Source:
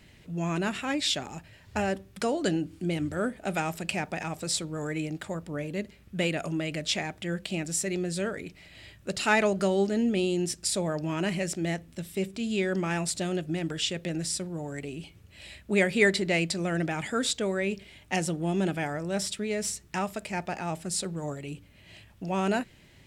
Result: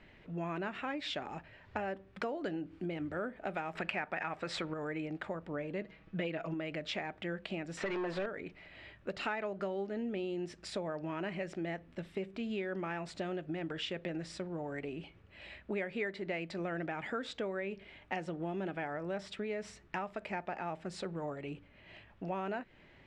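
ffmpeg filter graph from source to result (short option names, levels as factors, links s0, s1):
-filter_complex "[0:a]asettb=1/sr,asplit=3[s0][s1][s2];[s0]atrim=end=3.754[s3];[s1]atrim=start=3.75:end=4.74,asetpts=PTS-STARTPTS,afade=t=in:d=0.004:c=qsin,afade=t=out:st=0.986:d=0.004:c=qsin,equalizer=f=1700:w=0.72:g=8.5,acontrast=37[s4];[s2]atrim=start=4.736[s5];[s3][s4]acrossfade=d=0.004:c1=hsin:c2=qsin[s6];[s6][s5]acrossfade=d=0.004:c1=qsin:c2=hsin,asettb=1/sr,asplit=3[s7][s8][s9];[s7]atrim=end=5.814[s10];[s8]atrim=start=5.81:end=6.54,asetpts=PTS-STARTPTS,afade=t=in:d=0.004:c=qsin,afade=t=out:st=0.726:d=0.004:c=qsin,lowpass=f=7100:w=0.5412,lowpass=f=7100:w=1.3066,aecho=1:1:6.2:0.91,atrim=end_sample=32193[s11];[s9]atrim=start=6.536[s12];[s10][s11]acrossfade=d=0.004:c1=hsin:c2=qsin[s13];[s13][s12]acrossfade=d=0.004:c1=qsin:c2=hsin,asettb=1/sr,asplit=3[s14][s15][s16];[s14]atrim=end=7.774[s17];[s15]atrim=start=7.77:end=8.26,asetpts=PTS-STARTPTS,afade=t=in:d=0.004:c=qsin,afade=t=out:st=0.486:d=0.004:c=qsin,lowpass=10000,acrossover=split=3500[s18][s19];[s19]acompressor=threshold=0.00794:ratio=4:attack=1:release=60[s20];[s18][s20]amix=inputs=2:normalize=0,asplit=2[s21][s22];[s22]highpass=f=720:p=1,volume=17.8,asoftclip=type=tanh:threshold=0.106[s23];[s21][s23]amix=inputs=2:normalize=0,lowpass=f=4600:p=1,volume=0.501[s24];[s16]atrim=start=8.256[s25];[s17][s24]acrossfade=d=0.004:c1=hsin:c2=qsin[s26];[s26][s25]acrossfade=d=0.004:c1=qsin:c2=hsin,lowpass=2000,equalizer=f=97:w=0.42:g=-10.5,acompressor=threshold=0.0141:ratio=5,volume=1.26"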